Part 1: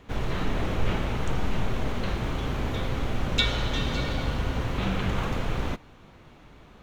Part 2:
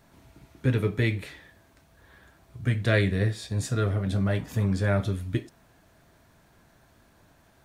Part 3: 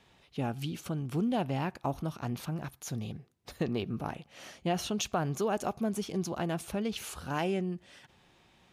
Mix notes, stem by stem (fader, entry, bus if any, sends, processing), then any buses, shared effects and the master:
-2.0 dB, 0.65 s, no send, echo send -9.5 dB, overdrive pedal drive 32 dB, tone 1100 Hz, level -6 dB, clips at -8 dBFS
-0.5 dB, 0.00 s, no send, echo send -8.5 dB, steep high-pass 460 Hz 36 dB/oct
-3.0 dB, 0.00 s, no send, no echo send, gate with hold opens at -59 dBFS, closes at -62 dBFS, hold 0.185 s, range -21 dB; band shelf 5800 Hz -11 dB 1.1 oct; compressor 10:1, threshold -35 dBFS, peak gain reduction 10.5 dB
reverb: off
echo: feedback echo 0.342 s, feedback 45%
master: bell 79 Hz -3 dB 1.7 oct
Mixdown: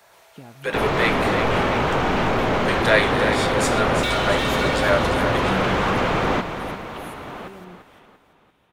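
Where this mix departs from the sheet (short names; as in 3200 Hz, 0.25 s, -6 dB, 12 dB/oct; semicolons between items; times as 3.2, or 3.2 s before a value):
stem 2 -0.5 dB -> +9.0 dB; master: missing bell 79 Hz -3 dB 1.7 oct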